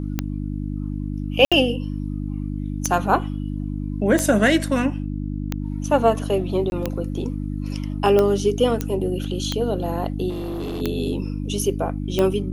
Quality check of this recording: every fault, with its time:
hum 50 Hz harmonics 6 -27 dBFS
tick 45 rpm -8 dBFS
1.45–1.52 gap 66 ms
6.7–6.72 gap 21 ms
8.81 pop -10 dBFS
10.29–10.82 clipped -25 dBFS

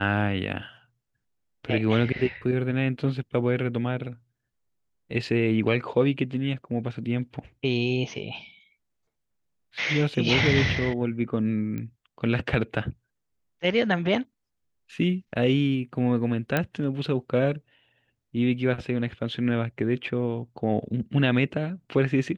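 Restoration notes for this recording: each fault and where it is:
11.78 pop -22 dBFS
16.57 pop -10 dBFS

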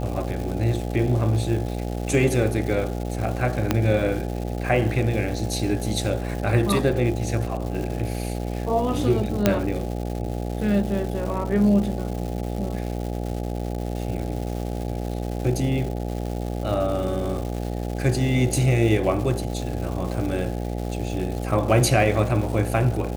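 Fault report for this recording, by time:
buzz 60 Hz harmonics 14 -28 dBFS
crackle 390/s -31 dBFS
3.71 pop -5 dBFS
9.46 pop -3 dBFS

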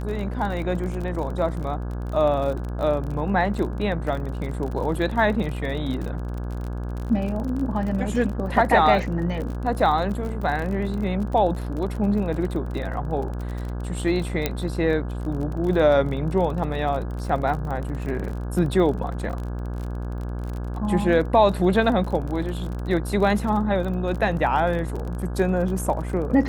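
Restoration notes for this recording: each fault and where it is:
buzz 60 Hz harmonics 28 -29 dBFS
crackle 37/s -30 dBFS
14.46 pop -7 dBFS

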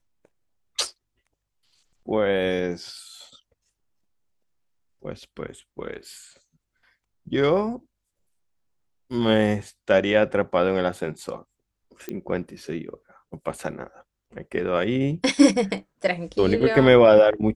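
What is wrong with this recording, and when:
12.09 pop -18 dBFS

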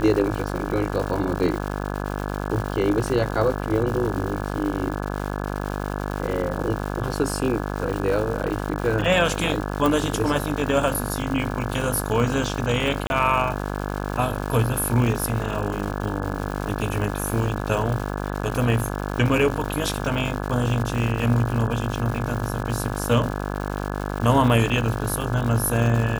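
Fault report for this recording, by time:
buzz 50 Hz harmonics 34 -28 dBFS
crackle 310/s -29 dBFS
9.86 pop
13.07–13.1 gap 31 ms

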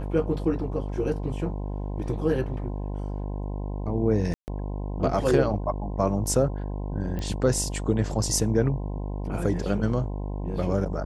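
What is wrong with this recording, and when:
buzz 50 Hz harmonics 21 -31 dBFS
4.34–4.48 gap 0.139 s
7.19 pop -20 dBFS

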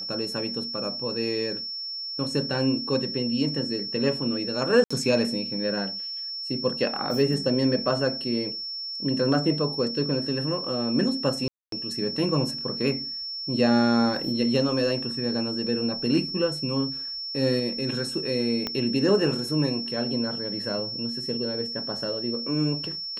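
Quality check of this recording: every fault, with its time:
tone 5400 Hz -31 dBFS
4.84–4.91 gap 65 ms
11.48–11.72 gap 0.243 s
18.67 pop -14 dBFS

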